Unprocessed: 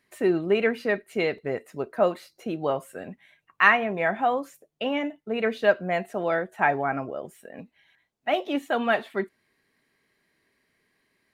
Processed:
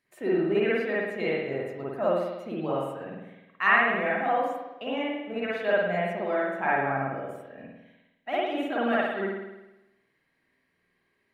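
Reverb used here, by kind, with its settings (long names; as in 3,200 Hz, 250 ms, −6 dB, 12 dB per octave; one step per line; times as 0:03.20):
spring reverb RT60 1 s, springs 51 ms, chirp 75 ms, DRR −7 dB
level −9.5 dB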